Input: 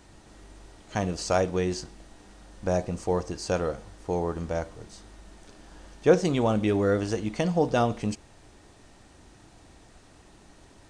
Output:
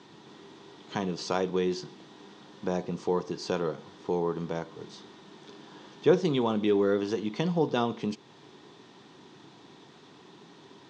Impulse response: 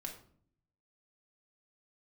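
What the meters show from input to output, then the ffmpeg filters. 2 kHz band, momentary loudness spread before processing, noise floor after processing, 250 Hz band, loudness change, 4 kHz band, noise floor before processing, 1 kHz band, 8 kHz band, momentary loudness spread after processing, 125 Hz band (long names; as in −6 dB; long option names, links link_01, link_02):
−4.0 dB, 13 LU, −54 dBFS, −1.5 dB, −2.5 dB, +0.5 dB, −55 dBFS, −3.0 dB, can't be measured, 21 LU, −5.0 dB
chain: -filter_complex "[0:a]equalizer=frequency=250:width_type=o:width=0.77:gain=2.5,asplit=2[link_01][link_02];[link_02]acompressor=threshold=-35dB:ratio=6,volume=2dB[link_03];[link_01][link_03]amix=inputs=2:normalize=0,acrusher=bits=9:mix=0:aa=0.000001,highpass=frequency=140:width=0.5412,highpass=frequency=140:width=1.3066,equalizer=frequency=150:width_type=q:width=4:gain=6,equalizer=frequency=400:width_type=q:width=4:gain=8,equalizer=frequency=610:width_type=q:width=4:gain=-6,equalizer=frequency=1000:width_type=q:width=4:gain=7,equalizer=frequency=3500:width_type=q:width=4:gain=9,lowpass=frequency=5900:width=0.5412,lowpass=frequency=5900:width=1.3066,volume=-7dB"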